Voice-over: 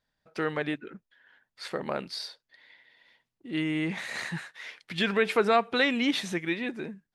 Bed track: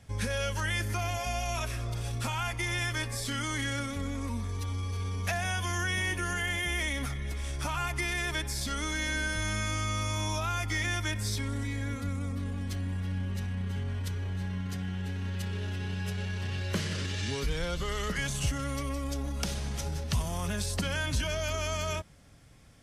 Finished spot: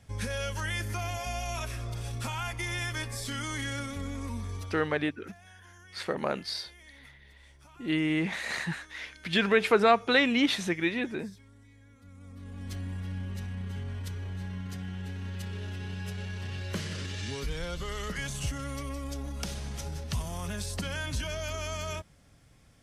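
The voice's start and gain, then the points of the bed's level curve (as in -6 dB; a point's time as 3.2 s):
4.35 s, +1.5 dB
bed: 4.55 s -2 dB
5.14 s -23 dB
11.92 s -23 dB
12.72 s -3 dB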